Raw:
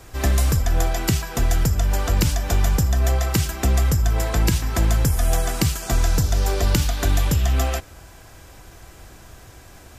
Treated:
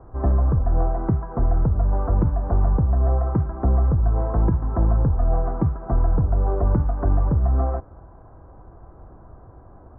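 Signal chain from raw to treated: steep low-pass 1.2 kHz 36 dB/octave

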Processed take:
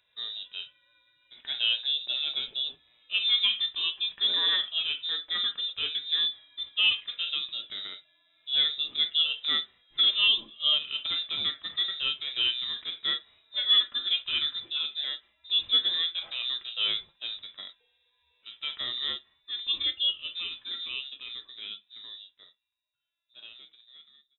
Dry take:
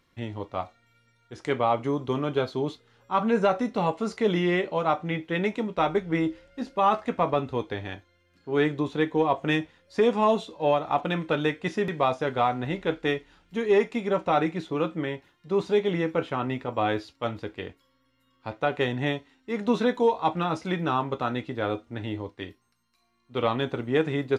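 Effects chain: fade out at the end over 7.09 s; frequency inversion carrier 3.8 kHz; harmonic-percussive split percussive -12 dB; trim -1.5 dB

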